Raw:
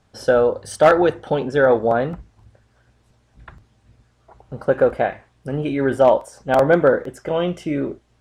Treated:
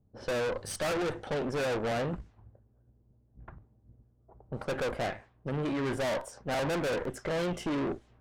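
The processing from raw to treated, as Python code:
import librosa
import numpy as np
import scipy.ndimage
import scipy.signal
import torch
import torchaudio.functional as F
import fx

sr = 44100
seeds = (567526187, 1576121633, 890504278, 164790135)

y = fx.rider(x, sr, range_db=4, speed_s=2.0)
y = fx.tube_stage(y, sr, drive_db=29.0, bias=0.75)
y = fx.env_lowpass(y, sr, base_hz=300.0, full_db=-34.0)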